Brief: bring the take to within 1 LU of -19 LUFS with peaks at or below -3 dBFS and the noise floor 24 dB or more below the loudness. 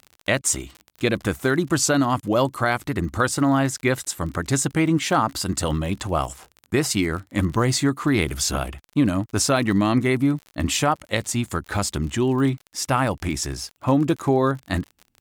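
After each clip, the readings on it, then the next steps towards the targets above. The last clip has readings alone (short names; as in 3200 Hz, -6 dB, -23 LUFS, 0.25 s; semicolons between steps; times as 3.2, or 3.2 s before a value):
ticks 45/s; loudness -22.5 LUFS; peak -7.5 dBFS; loudness target -19.0 LUFS
-> de-click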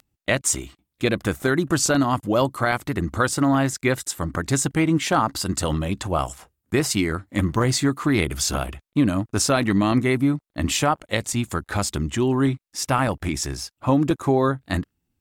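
ticks 0.39/s; loudness -22.5 LUFS; peak -7.5 dBFS; loudness target -19.0 LUFS
-> gain +3.5 dB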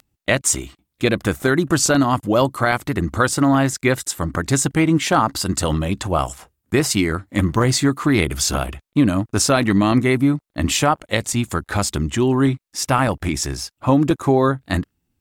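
loudness -19.0 LUFS; peak -4.0 dBFS; noise floor -74 dBFS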